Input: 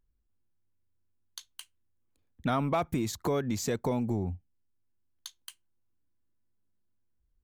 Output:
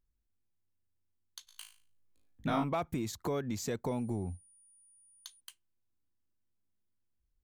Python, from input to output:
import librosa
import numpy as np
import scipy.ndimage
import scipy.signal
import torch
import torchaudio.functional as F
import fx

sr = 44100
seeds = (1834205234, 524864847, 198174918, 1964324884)

y = fx.room_flutter(x, sr, wall_m=3.2, rt60_s=0.4, at=(1.47, 2.63), fade=0.02)
y = fx.dmg_tone(y, sr, hz=9500.0, level_db=-56.0, at=(3.87, 5.39), fade=0.02)
y = y * librosa.db_to_amplitude(-5.0)